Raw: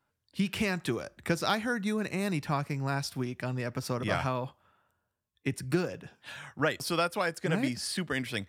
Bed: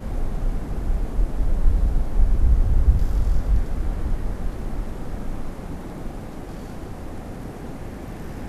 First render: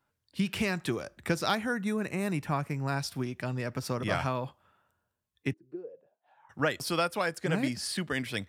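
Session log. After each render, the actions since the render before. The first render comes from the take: 1.55–2.88 s: peaking EQ 4.4 kHz -8.5 dB 0.67 oct; 5.52–6.49 s: band-pass filter 300 Hz -> 950 Hz, Q 12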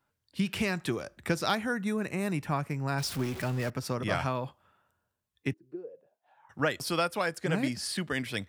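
2.98–3.70 s: jump at every zero crossing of -35.5 dBFS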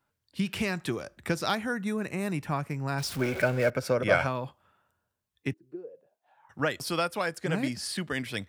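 3.20–4.26 s: small resonant body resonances 550/1500/2200 Hz, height 16 dB -> 12 dB, ringing for 20 ms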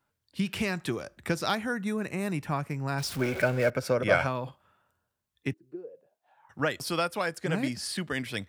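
4.42–5.47 s: doubling 48 ms -12 dB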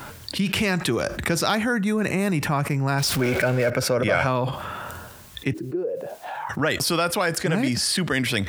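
level flattener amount 70%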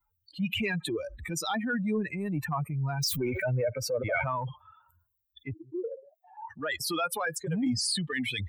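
expander on every frequency bin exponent 3; transient shaper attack -6 dB, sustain +4 dB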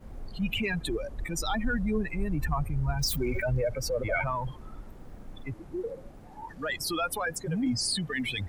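add bed -16 dB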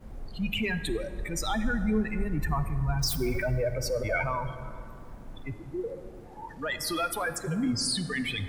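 plate-style reverb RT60 2.6 s, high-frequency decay 0.45×, DRR 10.5 dB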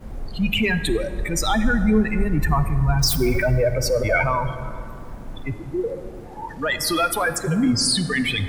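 trim +9 dB

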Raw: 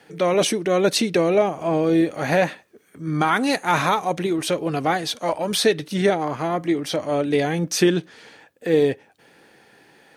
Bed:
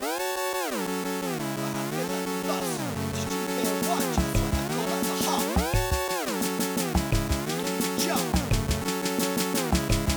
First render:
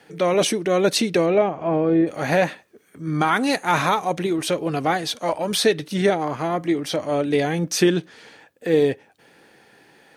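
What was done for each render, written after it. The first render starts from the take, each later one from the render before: 1.25–2.06 s: low-pass 3.9 kHz -> 1.5 kHz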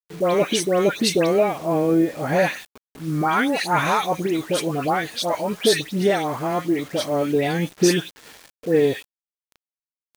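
phase dispersion highs, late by 128 ms, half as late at 1.8 kHz; bit crusher 7-bit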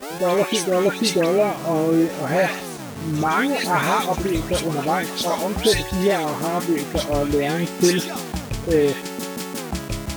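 add bed -3 dB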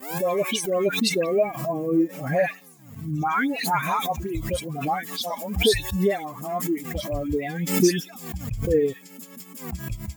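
expander on every frequency bin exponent 2; swell ahead of each attack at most 80 dB/s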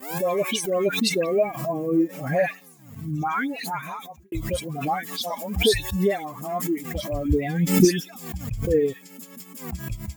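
3.07–4.32 s: fade out; 7.25–7.85 s: bass shelf 190 Hz +11.5 dB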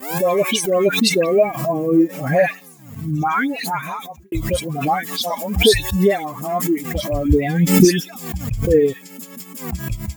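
trim +6.5 dB; peak limiter -1 dBFS, peak gain reduction 3 dB

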